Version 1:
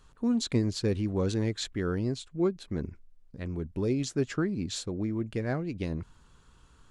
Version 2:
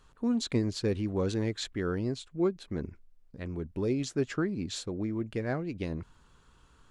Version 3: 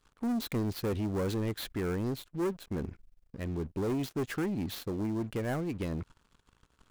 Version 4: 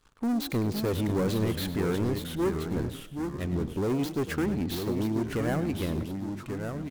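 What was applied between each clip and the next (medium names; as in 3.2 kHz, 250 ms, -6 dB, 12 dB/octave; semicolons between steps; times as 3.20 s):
tone controls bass -3 dB, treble -3 dB
dead-time distortion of 0.058 ms; waveshaping leveller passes 3; trim -8.5 dB
frequency-shifting echo 100 ms, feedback 36%, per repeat +46 Hz, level -14 dB; ever faster or slower copies 482 ms, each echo -2 st, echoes 2, each echo -6 dB; trim +3.5 dB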